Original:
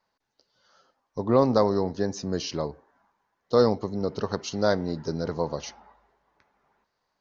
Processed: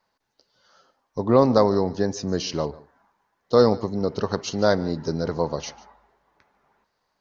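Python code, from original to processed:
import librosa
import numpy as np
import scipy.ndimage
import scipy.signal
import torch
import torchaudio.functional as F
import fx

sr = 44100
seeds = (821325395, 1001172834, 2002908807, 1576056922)

y = x + 10.0 ** (-20.5 / 20.0) * np.pad(x, (int(147 * sr / 1000.0), 0))[:len(x)]
y = y * 10.0 ** (3.5 / 20.0)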